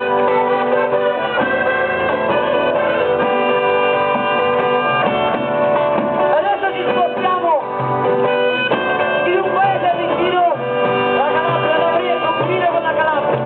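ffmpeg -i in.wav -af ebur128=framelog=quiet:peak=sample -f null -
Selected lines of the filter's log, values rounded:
Integrated loudness:
  I:         -15.9 LUFS
  Threshold: -25.9 LUFS
Loudness range:
  LRA:         0.8 LU
  Threshold: -35.9 LUFS
  LRA low:   -16.3 LUFS
  LRA high:  -15.5 LUFS
Sample peak:
  Peak:       -4.9 dBFS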